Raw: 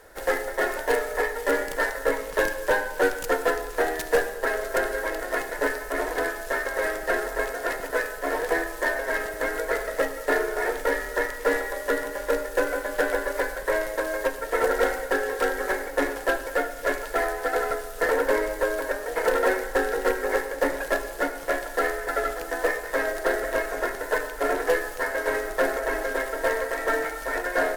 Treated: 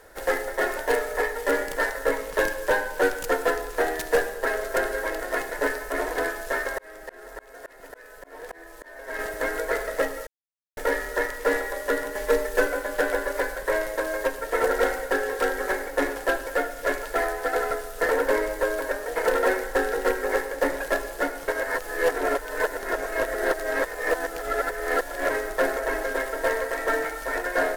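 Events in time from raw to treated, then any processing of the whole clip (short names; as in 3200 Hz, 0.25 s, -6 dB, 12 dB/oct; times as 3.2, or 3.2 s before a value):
6.55–9.19 auto swell 0.694 s
10.27–10.77 mute
12.15–12.67 comb 4.6 ms, depth 92%
21.48–25.3 reverse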